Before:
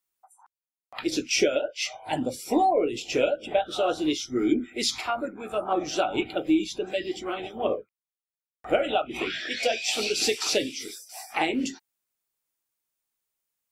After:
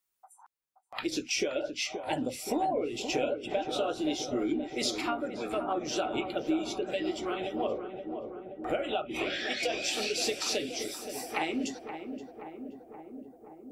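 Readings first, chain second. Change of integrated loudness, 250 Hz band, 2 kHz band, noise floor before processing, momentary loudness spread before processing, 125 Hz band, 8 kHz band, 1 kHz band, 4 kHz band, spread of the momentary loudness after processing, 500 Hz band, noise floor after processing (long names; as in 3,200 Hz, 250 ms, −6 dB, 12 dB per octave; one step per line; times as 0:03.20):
−5.5 dB, −5.0 dB, −4.5 dB, below −85 dBFS, 9 LU, −3.0 dB, −4.5 dB, −5.5 dB, −4.5 dB, 13 LU, −5.5 dB, −64 dBFS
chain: downward compressor 2.5 to 1, threshold −31 dBFS, peak gain reduction 10 dB
feedback echo with a low-pass in the loop 525 ms, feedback 77%, low-pass 1,200 Hz, level −7.5 dB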